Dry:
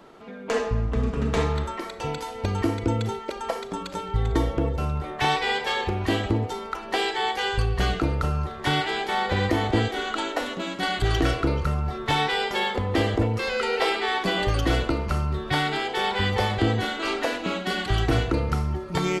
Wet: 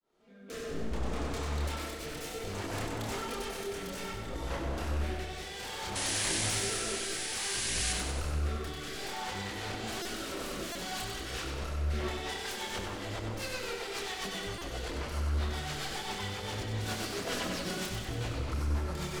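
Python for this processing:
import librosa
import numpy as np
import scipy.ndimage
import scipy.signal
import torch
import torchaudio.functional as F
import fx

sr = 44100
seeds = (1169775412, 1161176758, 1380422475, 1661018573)

y = fx.fade_in_head(x, sr, length_s=1.62)
y = fx.bass_treble(y, sr, bass_db=-2, treble_db=9)
y = fx.over_compress(y, sr, threshold_db=-30.0, ratio=-1.0)
y = 10.0 ** (-28.5 / 20.0) * (np.abs((y / 10.0 ** (-28.5 / 20.0) + 3.0) % 4.0 - 2.0) - 1.0)
y = fx.chorus_voices(y, sr, voices=6, hz=1.2, base_ms=28, depth_ms=3.0, mix_pct=45)
y = fx.spec_paint(y, sr, seeds[0], shape='noise', start_s=5.95, length_s=1.98, low_hz=1500.0, high_hz=11000.0, level_db=-34.0)
y = fx.rotary_switch(y, sr, hz=0.6, then_hz=7.5, switch_at_s=11.68)
y = fx.echo_feedback(y, sr, ms=95, feedback_pct=60, wet_db=-5.5)
y = fx.buffer_glitch(y, sr, at_s=(10.02, 10.72, 14.58), block=128, repeats=10)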